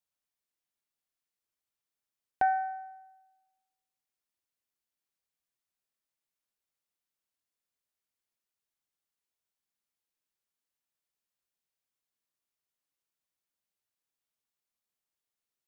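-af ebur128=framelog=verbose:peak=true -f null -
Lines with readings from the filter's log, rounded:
Integrated loudness:
  I:         -30.7 LUFS
  Threshold: -43.3 LUFS
Loudness range:
  LRA:         9.9 LU
  Threshold: -58.5 LUFS
  LRA low:   -47.6 LUFS
  LRA high:  -37.6 LUFS
True peak:
  Peak:      -17.8 dBFS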